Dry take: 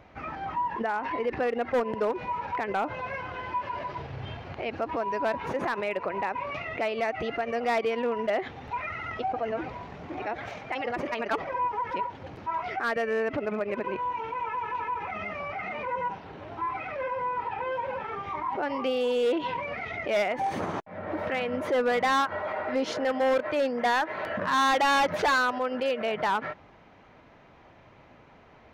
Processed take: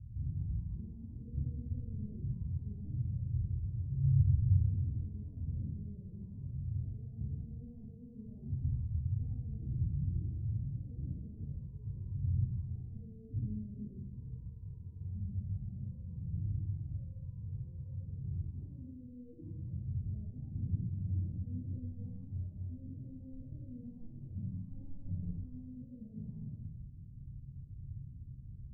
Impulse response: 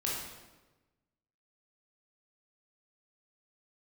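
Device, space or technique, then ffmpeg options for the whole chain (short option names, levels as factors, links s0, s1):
club heard from the street: -filter_complex "[0:a]alimiter=level_in=2:limit=0.0631:level=0:latency=1:release=24,volume=0.501,lowpass=f=130:w=0.5412,lowpass=f=130:w=1.3066[s0];[1:a]atrim=start_sample=2205[s1];[s0][s1]afir=irnorm=-1:irlink=0,asettb=1/sr,asplit=3[s2][s3][s4];[s2]atrim=end=8.354[s5];[s3]atrim=start=8.35:end=9.39,asetpts=PTS-STARTPTS,afade=t=in:d=0.004:c=qsin,afade=t=out:st=1.036:d=0.004:c=qsin,equalizer=f=830:w=7:g=11.5[s6];[s4]atrim=start=9.386[s7];[s5][s6]acrossfade=d=0.004:c1=hsin:c2=qsin[s8];[s8][s7]acrossfade=d=0.004:c1=qsin:c2=hsin,volume=3.16"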